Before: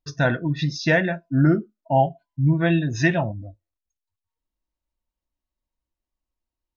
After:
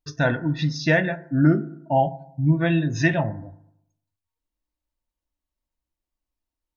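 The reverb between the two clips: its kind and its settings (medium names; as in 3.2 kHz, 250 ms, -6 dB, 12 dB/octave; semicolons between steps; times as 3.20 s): FDN reverb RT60 0.77 s, low-frequency decay 1.05×, high-frequency decay 0.3×, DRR 12.5 dB; trim -1 dB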